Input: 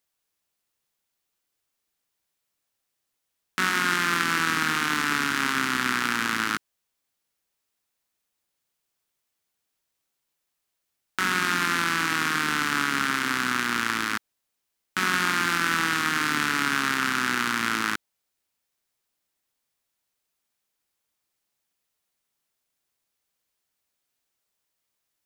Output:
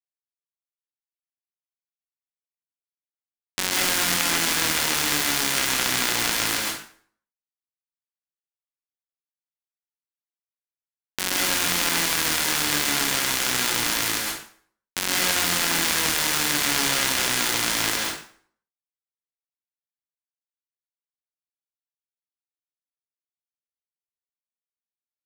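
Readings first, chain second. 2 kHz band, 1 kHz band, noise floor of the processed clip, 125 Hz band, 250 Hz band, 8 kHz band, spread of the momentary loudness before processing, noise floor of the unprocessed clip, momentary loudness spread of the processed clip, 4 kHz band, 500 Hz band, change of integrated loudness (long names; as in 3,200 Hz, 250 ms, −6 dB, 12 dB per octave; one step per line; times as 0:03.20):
−2.0 dB, −3.0 dB, below −85 dBFS, +1.0 dB, −1.5 dB, +11.0 dB, 5 LU, −81 dBFS, 8 LU, +6.5 dB, +5.5 dB, +3.0 dB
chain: ceiling on every frequency bin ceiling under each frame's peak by 15 dB
parametric band 1,200 Hz −8.5 dB 0.29 octaves
dead-zone distortion −30 dBFS
log-companded quantiser 2 bits
dense smooth reverb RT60 0.54 s, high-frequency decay 0.8×, pre-delay 120 ms, DRR −2.5 dB
level −5 dB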